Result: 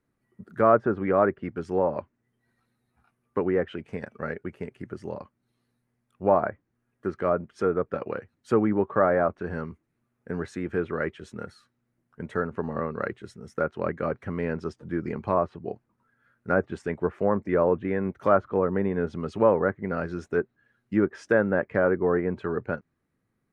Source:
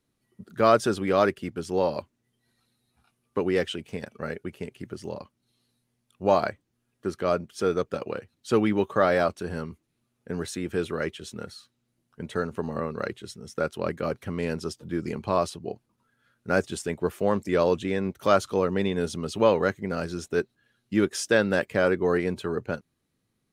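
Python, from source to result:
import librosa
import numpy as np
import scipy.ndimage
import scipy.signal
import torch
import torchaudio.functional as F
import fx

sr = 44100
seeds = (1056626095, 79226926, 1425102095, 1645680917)

y = fx.high_shelf_res(x, sr, hz=2500.0, db=-9.5, q=1.5)
y = fx.env_lowpass_down(y, sr, base_hz=1400.0, full_db=-20.0)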